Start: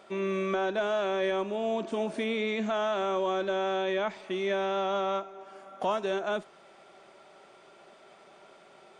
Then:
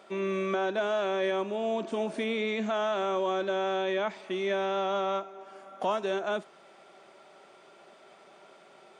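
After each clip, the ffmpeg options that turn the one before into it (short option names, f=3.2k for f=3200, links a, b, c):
-af "highpass=130"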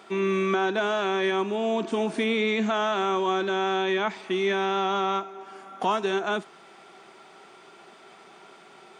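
-af "equalizer=f=580:t=o:w=0.24:g=-14,volume=6.5dB"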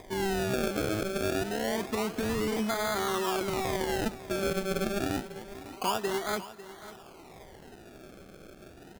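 -af "acompressor=mode=upward:threshold=-37dB:ratio=2.5,acrusher=samples=31:mix=1:aa=0.000001:lfo=1:lforange=31:lforate=0.27,aecho=1:1:548:0.168,volume=-5dB"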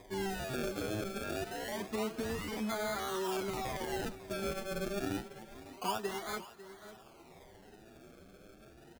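-filter_complex "[0:a]asplit=2[a][b];[b]adelay=7.9,afreqshift=1.2[c];[a][c]amix=inputs=2:normalize=1,volume=-3.5dB"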